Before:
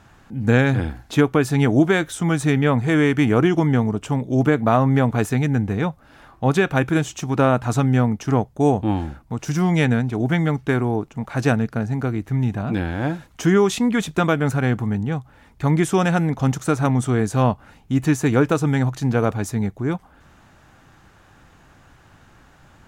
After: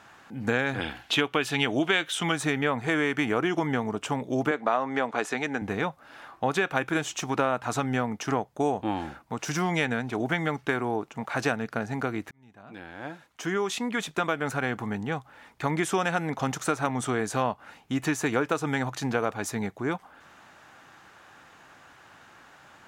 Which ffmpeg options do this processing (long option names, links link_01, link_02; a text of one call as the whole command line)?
ffmpeg -i in.wav -filter_complex "[0:a]asettb=1/sr,asplit=3[link_01][link_02][link_03];[link_01]atrim=end=0.804[link_04];[link_02]atrim=start=0.8:end=2.32,asetpts=PTS-STARTPTS,afade=type=in:duration=0.004:curve=qsin,afade=type=out:start_time=1.516:duration=0.004:curve=qsin,equalizer=frequency=3000:width_type=o:width=0.8:gain=12.5[link_05];[link_03]atrim=start=2.316[link_06];[link_04][link_05]acrossfade=duration=0.004:curve1=hsin:curve2=qsin[link_07];[link_07][link_06]acrossfade=duration=0.004:curve1=qsin:curve2=hsin,asettb=1/sr,asplit=3[link_08][link_09][link_10];[link_08]atrim=end=4.514[link_11];[link_09]atrim=start=4.51:end=5.62,asetpts=PTS-STARTPTS,afade=type=in:duration=0.004:curve=qsin,afade=type=out:start_time=1.106:duration=0.004:curve=qsin,highpass=280,lowpass=7800[link_12];[link_10]atrim=start=5.616[link_13];[link_11][link_12]acrossfade=duration=0.004:curve1=hsin:curve2=qsin[link_14];[link_14][link_13]acrossfade=duration=0.004:curve1=qsin:curve2=hsin,asplit=2[link_15][link_16];[link_15]atrim=end=12.31,asetpts=PTS-STARTPTS,afade=type=out:start_time=12.306:duration=0.004:curve=hsin[link_17];[link_16]atrim=start=12.31,asetpts=PTS-STARTPTS,afade=type=in:duration=2.83[link_18];[link_17][link_18]concat=n=2:v=0:a=1,highpass=frequency=770:poles=1,highshelf=frequency=4900:gain=-6,acompressor=threshold=-28dB:ratio=2.5,volume=4dB" out.wav